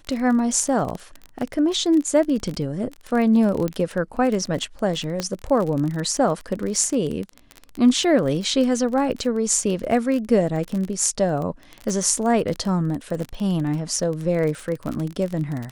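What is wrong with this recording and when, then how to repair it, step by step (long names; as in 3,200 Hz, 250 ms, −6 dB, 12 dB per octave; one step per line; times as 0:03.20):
surface crackle 30 per second −25 dBFS
0:03.68: click −13 dBFS
0:05.20: click −11 dBFS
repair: click removal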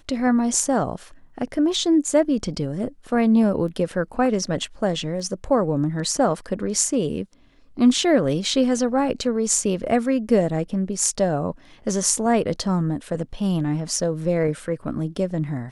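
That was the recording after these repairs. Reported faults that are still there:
0:03.68: click
0:05.20: click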